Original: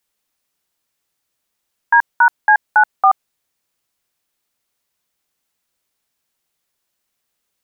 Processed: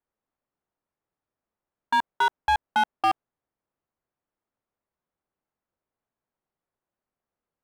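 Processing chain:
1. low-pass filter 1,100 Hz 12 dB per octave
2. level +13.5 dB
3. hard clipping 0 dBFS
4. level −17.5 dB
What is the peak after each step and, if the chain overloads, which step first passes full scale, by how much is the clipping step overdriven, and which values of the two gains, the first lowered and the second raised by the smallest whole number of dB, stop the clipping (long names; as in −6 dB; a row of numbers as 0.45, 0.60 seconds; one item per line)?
−5.5, +8.0, 0.0, −17.5 dBFS
step 2, 8.0 dB
step 2 +5.5 dB, step 4 −9.5 dB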